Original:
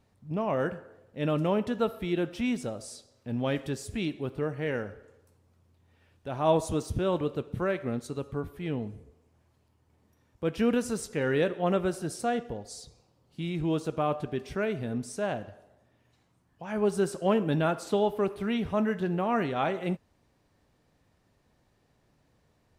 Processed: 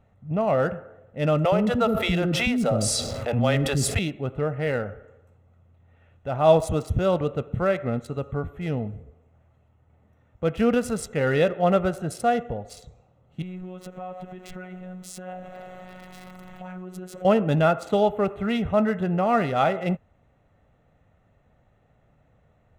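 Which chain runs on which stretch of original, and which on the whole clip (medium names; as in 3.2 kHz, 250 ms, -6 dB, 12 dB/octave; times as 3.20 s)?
1.45–3.99 s: bands offset in time highs, lows 70 ms, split 410 Hz + level flattener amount 70%
13.42–17.25 s: jump at every zero crossing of -40.5 dBFS + compression 3:1, threshold -41 dBFS + robot voice 183 Hz
whole clip: local Wiener filter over 9 samples; comb 1.5 ms, depth 47%; trim +5.5 dB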